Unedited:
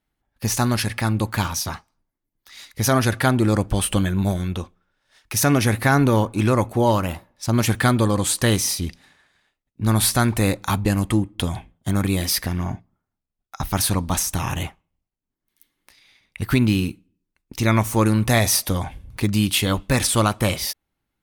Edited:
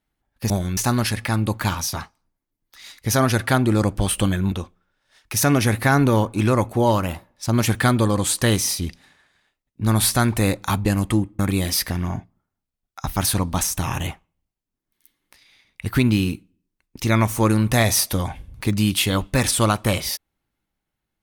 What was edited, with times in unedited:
4.25–4.52 move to 0.5
11.39–11.95 cut

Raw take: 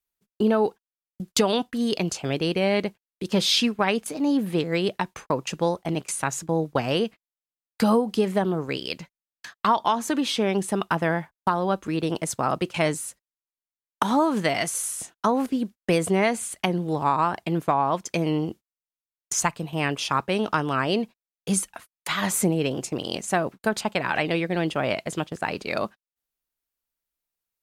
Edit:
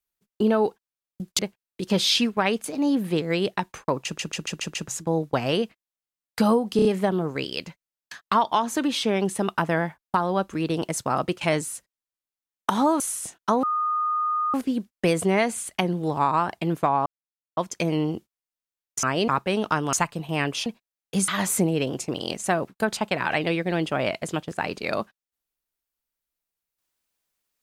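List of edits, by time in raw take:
1.39–2.81 cut
5.46 stutter in place 0.14 s, 6 plays
8.18 stutter 0.03 s, 4 plays
14.33–14.76 cut
15.39 add tone 1230 Hz -21.5 dBFS 0.91 s
17.91 insert silence 0.51 s
19.37–20.1 swap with 20.75–21
21.62–22.12 cut

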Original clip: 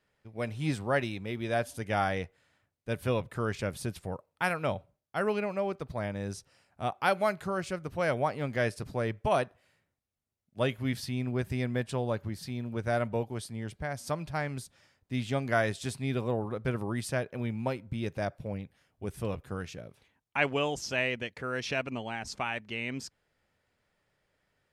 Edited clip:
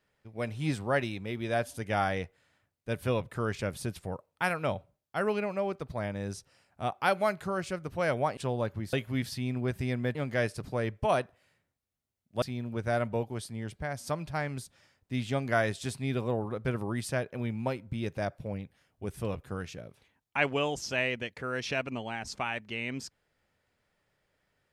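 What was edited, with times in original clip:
8.37–10.64 swap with 11.86–12.42

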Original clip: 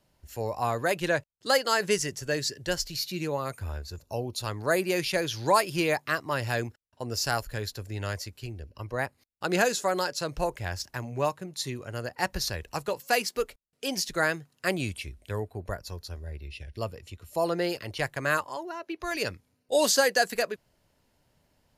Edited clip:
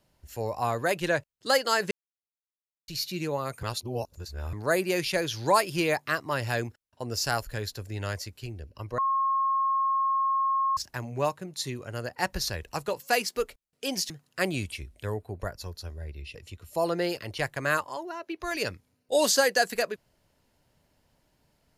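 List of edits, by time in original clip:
1.91–2.88 mute
3.63–4.53 reverse
8.98–10.77 bleep 1080 Hz -22.5 dBFS
14.1–14.36 cut
16.61–16.95 cut

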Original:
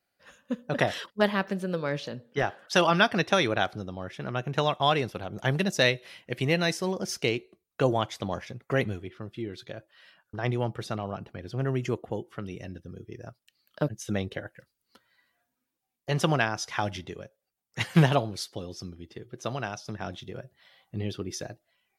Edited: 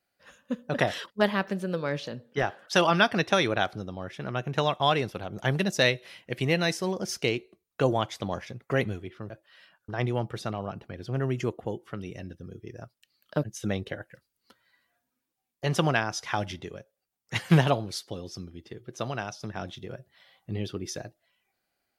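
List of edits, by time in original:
9.3–9.75 cut

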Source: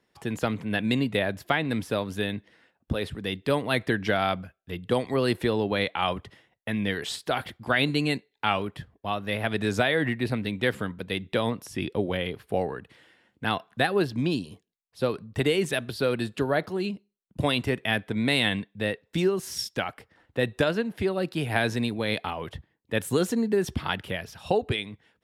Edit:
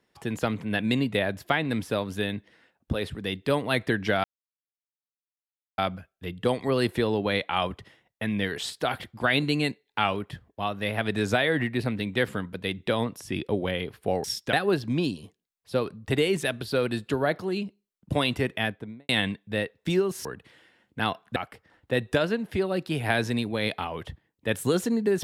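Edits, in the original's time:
4.24 insert silence 1.54 s
12.7–13.81 swap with 19.53–19.82
17.8–18.37 studio fade out

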